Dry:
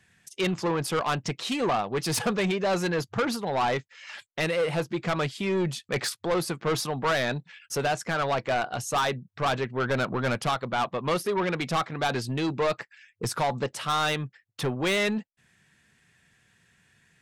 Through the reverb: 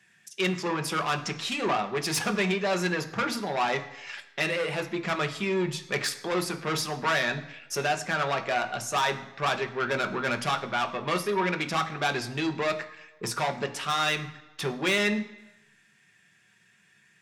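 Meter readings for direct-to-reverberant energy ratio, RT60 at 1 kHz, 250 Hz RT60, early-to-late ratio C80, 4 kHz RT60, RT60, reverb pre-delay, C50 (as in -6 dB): 5.5 dB, 1.0 s, 0.85 s, 15.5 dB, 0.90 s, 1.0 s, 4 ms, 12.5 dB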